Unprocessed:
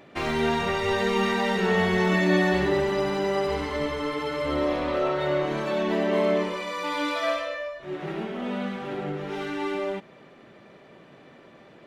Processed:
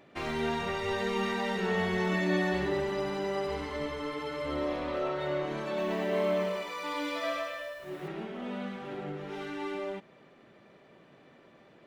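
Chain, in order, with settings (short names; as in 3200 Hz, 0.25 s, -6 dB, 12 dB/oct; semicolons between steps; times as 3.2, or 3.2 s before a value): 5.67–8.08 lo-fi delay 0.107 s, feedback 55%, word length 8-bit, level -6 dB; gain -7 dB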